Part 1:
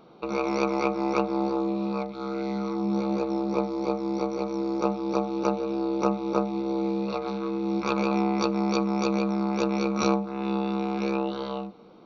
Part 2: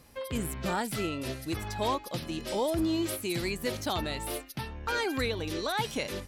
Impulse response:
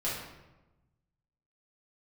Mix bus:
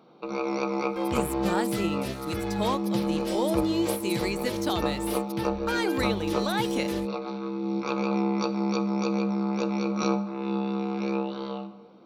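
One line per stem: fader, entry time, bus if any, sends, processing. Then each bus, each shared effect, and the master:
−4.5 dB, 0.00 s, send −14 dB, high-pass filter 110 Hz
+2.0 dB, 0.80 s, no send, dead-zone distortion −52 dBFS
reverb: on, RT60 1.1 s, pre-delay 4 ms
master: no processing

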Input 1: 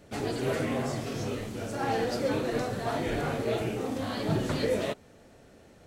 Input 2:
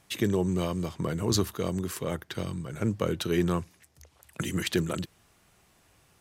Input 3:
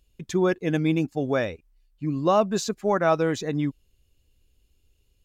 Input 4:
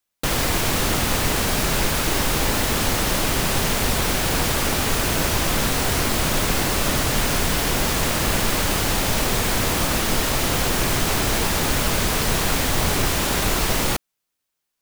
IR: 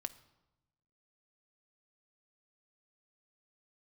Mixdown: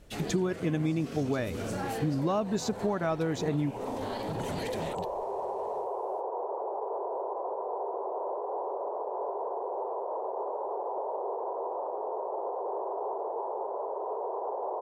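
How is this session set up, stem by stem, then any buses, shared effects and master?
−9.0 dB, 0.00 s, bus A, no send, automatic gain control gain up to 9 dB
−8.5 dB, 0.00 s, no bus, no send, brickwall limiter −23 dBFS, peak gain reduction 10 dB
+0.5 dB, 0.00 s, no bus, no send, low-shelf EQ 320 Hz +7 dB; notch filter 530 Hz
−1.5 dB, 1.95 s, bus A, no send, Chebyshev band-pass filter 390–990 Hz, order 4
bus A: 0.0 dB, speech leveller within 4 dB; brickwall limiter −26 dBFS, peak gain reduction 8.5 dB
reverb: not used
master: downward compressor 6 to 1, threshold −26 dBFS, peak gain reduction 12.5 dB

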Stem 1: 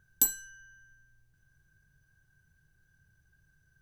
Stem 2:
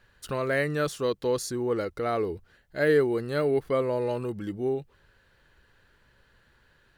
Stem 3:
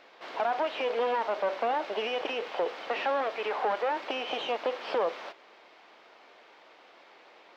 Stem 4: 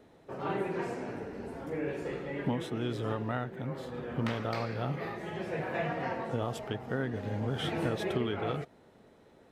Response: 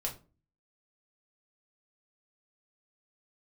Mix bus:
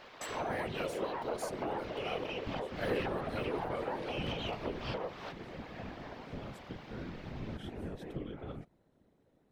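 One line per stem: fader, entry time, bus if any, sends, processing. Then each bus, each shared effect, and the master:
−13.5 dB, 0.00 s, no send, low-pass filter 6,700 Hz 24 dB per octave
−13.5 dB, 0.00 s, no send, no processing
+2.0 dB, 0.00 s, no send, downward compressor 5 to 1, threshold −40 dBFS, peak gain reduction 14.5 dB
−16.5 dB, 0.00 s, no send, parametric band 130 Hz +10 dB 2.8 octaves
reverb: not used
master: high-shelf EQ 10,000 Hz +5 dB; random phases in short frames

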